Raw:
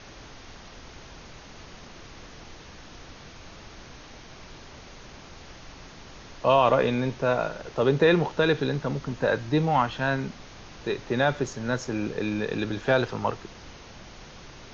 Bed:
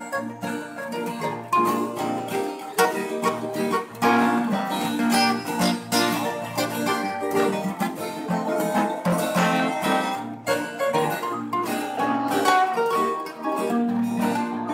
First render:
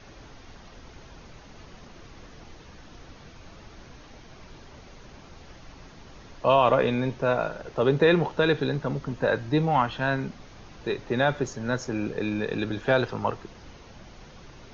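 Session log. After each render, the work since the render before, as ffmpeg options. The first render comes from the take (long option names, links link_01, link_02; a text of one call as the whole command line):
ffmpeg -i in.wav -af "afftdn=noise_reduction=6:noise_floor=-46" out.wav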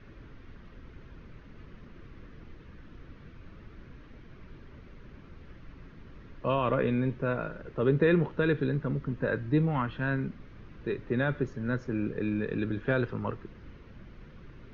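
ffmpeg -i in.wav -af "lowpass=1800,equalizer=frequency=770:width=1.5:gain=-15" out.wav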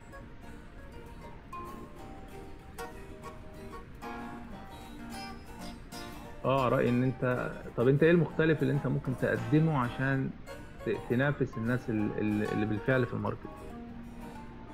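ffmpeg -i in.wav -i bed.wav -filter_complex "[1:a]volume=-23dB[link_01];[0:a][link_01]amix=inputs=2:normalize=0" out.wav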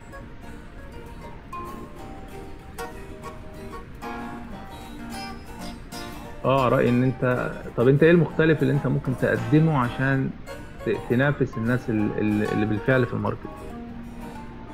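ffmpeg -i in.wav -af "volume=7.5dB" out.wav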